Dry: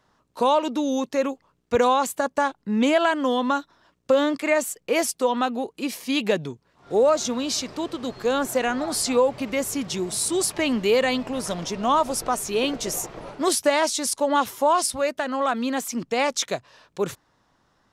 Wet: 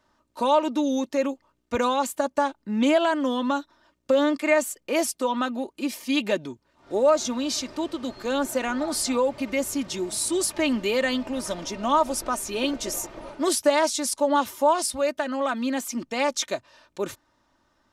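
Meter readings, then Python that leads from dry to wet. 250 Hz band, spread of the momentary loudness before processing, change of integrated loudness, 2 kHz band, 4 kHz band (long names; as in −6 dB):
0.0 dB, 9 LU, −1.5 dB, −2.0 dB, −2.0 dB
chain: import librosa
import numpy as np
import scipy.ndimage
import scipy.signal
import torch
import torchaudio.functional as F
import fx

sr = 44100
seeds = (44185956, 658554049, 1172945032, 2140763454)

y = x + 0.54 * np.pad(x, (int(3.3 * sr / 1000.0), 0))[:len(x)]
y = y * librosa.db_to_amplitude(-3.0)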